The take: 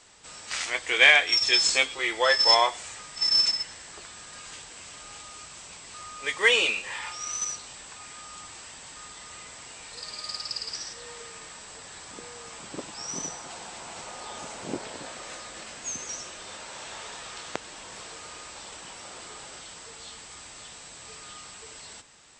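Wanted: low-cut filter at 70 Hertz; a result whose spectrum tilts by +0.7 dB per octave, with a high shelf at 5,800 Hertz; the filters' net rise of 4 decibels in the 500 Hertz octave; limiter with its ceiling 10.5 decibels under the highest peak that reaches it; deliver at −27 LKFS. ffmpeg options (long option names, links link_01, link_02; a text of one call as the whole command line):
ffmpeg -i in.wav -af "highpass=70,equalizer=frequency=500:width_type=o:gain=4.5,highshelf=frequency=5800:gain=8,alimiter=limit=-12.5dB:level=0:latency=1" out.wav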